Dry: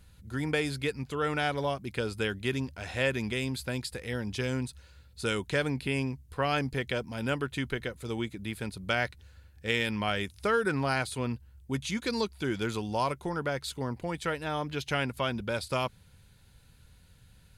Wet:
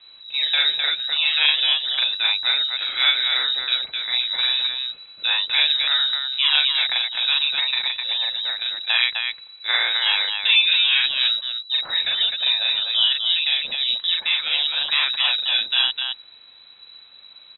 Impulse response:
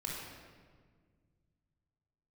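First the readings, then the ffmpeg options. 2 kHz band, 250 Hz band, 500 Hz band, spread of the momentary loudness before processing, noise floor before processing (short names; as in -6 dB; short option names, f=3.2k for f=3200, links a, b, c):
+10.5 dB, under -25 dB, -14.0 dB, 7 LU, -58 dBFS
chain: -filter_complex "[0:a]acrossover=split=2900[a][b];[b]acompressor=threshold=-52dB:ratio=4:attack=1:release=60[c];[a][c]amix=inputs=2:normalize=0,aecho=1:1:40.82|256.6:0.891|0.631,lowpass=f=3.4k:t=q:w=0.5098,lowpass=f=3.4k:t=q:w=0.6013,lowpass=f=3.4k:t=q:w=0.9,lowpass=f=3.4k:t=q:w=2.563,afreqshift=-4000,volume=7.5dB"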